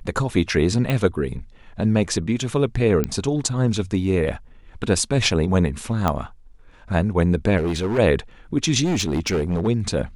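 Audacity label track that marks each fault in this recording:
0.900000	0.900000	pop -11 dBFS
3.040000	3.040000	pop -9 dBFS
6.080000	6.080000	pop -8 dBFS
7.570000	7.990000	clipped -19 dBFS
8.840000	9.680000	clipped -17.5 dBFS

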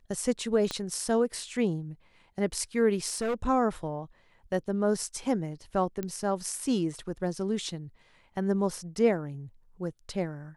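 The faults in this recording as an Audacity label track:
0.710000	0.710000	pop -17 dBFS
3.070000	3.480000	clipped -26 dBFS
6.030000	6.030000	pop -20 dBFS

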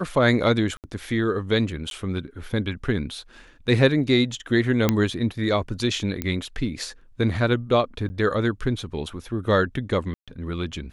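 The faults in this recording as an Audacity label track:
0.770000	0.840000	gap 68 ms
1.900000	1.910000	gap
4.890000	4.890000	pop -5 dBFS
6.220000	6.220000	pop -12 dBFS
8.090000	8.100000	gap 10 ms
10.140000	10.280000	gap 0.136 s

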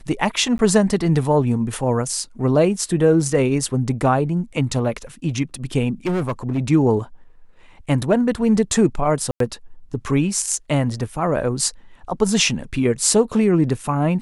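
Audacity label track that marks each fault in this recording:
0.580000	0.590000	gap 11 ms
6.060000	6.590000	clipped -17.5 dBFS
9.310000	9.400000	gap 93 ms

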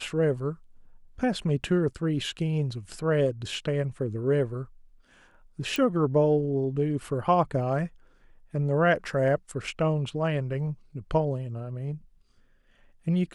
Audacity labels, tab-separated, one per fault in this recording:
5.760000	5.760000	pop

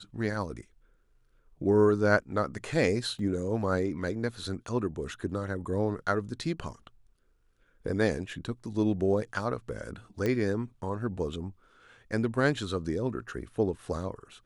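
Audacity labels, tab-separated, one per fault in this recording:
3.190000	3.190000	gap 2.4 ms
10.260000	10.260000	pop -17 dBFS

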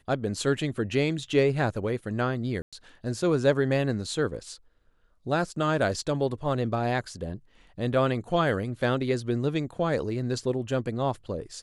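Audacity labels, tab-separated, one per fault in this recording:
2.620000	2.730000	gap 0.106 s

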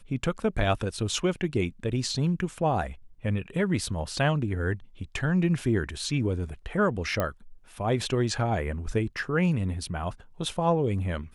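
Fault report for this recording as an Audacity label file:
7.200000	7.200000	pop -13 dBFS

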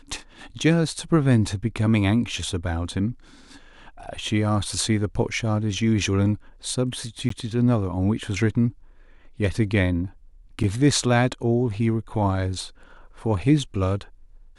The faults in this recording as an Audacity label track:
7.290000	7.300000	gap 14 ms
10.630000	10.640000	gap 6.8 ms

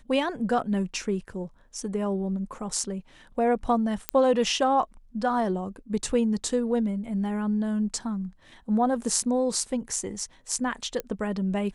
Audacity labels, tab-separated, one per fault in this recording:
4.090000	4.090000	pop -8 dBFS
11.000000	11.000000	pop -16 dBFS

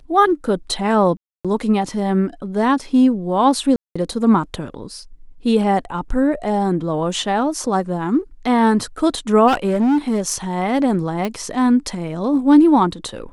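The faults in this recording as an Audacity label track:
1.170000	1.450000	gap 0.276 s
3.760000	3.960000	gap 0.195 s
9.470000	10.340000	clipped -13 dBFS
11.250000	11.250000	pop -10 dBFS

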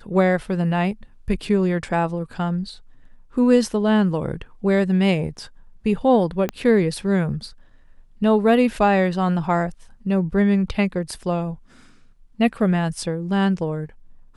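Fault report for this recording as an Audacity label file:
6.490000	6.490000	pop -11 dBFS

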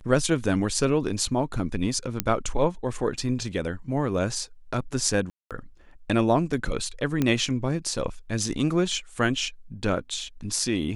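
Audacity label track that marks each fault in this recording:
2.200000	2.200000	pop -5 dBFS
5.300000	5.510000	gap 0.207 s
7.220000	7.220000	pop -11 dBFS

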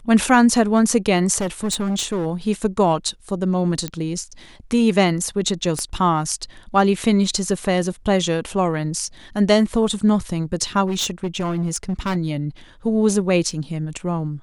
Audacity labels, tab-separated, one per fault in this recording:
1.370000	2.270000	clipped -18.5 dBFS
3.880000	3.880000	pop -10 dBFS
5.790000	5.790000	pop -12 dBFS
10.860000	12.170000	clipped -18.5 dBFS
13.510000	13.510000	gap 2.7 ms

